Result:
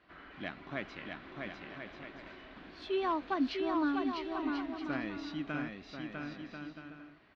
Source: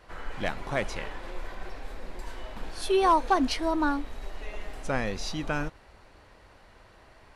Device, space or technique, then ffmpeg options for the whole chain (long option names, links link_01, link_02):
guitar cabinet: -af "highpass=100,equalizer=frequency=110:width_type=q:width=4:gain=-8,equalizer=frequency=290:width_type=q:width=4:gain=6,equalizer=frequency=500:width_type=q:width=4:gain=-10,equalizer=frequency=880:width_type=q:width=4:gain=-9,lowpass=frequency=4000:width=0.5412,lowpass=frequency=4000:width=1.3066,aecho=1:1:650|1040|1274|1414|1499:0.631|0.398|0.251|0.158|0.1,volume=-8dB"